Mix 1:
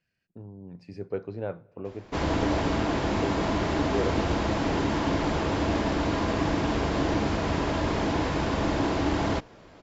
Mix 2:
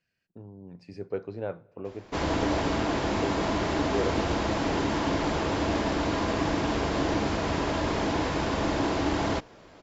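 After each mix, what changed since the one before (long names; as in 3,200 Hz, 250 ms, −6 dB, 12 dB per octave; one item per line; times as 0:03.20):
master: add bass and treble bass −3 dB, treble +2 dB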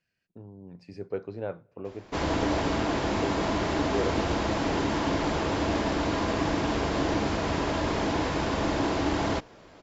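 speech: send −6.0 dB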